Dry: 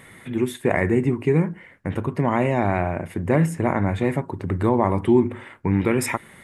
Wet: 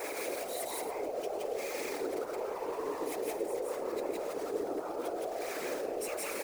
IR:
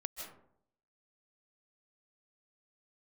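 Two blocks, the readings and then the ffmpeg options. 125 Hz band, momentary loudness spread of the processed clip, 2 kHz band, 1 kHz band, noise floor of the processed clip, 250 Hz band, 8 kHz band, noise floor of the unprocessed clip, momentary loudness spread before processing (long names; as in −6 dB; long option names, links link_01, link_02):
below −35 dB, 1 LU, −14.0 dB, −12.5 dB, −40 dBFS, −21.0 dB, −4.0 dB, −48 dBFS, 8 LU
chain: -filter_complex "[0:a]aeval=exprs='val(0)+0.5*0.0944*sgn(val(0))':channel_layout=same,afreqshift=310,acrossover=split=3600[link_01][link_02];[link_01]acrusher=bits=5:mix=0:aa=0.5[link_03];[link_03][link_02]amix=inputs=2:normalize=0,aeval=exprs='0.891*(cos(1*acos(clip(val(0)/0.891,-1,1)))-cos(1*PI/2))+0.00891*(cos(6*acos(clip(val(0)/0.891,-1,1)))-cos(6*PI/2))':channel_layout=same,equalizer=frequency=500:width=0.37:gain=9,acompressor=threshold=-13dB:ratio=6,alimiter=limit=-14.5dB:level=0:latency=1:release=13,aecho=1:1:169.1|218.7|277:1|0.251|0.251,acrossover=split=360|3000[link_04][link_05][link_06];[link_05]acompressor=threshold=-26dB:ratio=6[link_07];[link_04][link_07][link_06]amix=inputs=3:normalize=0,afftfilt=real='hypot(re,im)*cos(2*PI*random(0))':imag='hypot(re,im)*sin(2*PI*random(1))':win_size=512:overlap=0.75,adynamicequalizer=threshold=0.00282:dfrequency=3100:dqfactor=1.8:tfrequency=3100:tqfactor=1.8:attack=5:release=100:ratio=0.375:range=3:mode=cutabove:tftype=bell,volume=-6.5dB"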